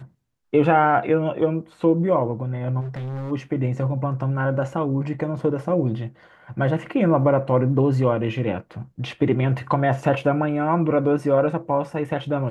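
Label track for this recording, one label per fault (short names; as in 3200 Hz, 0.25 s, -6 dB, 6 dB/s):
2.800000	3.320000	clipped -27.5 dBFS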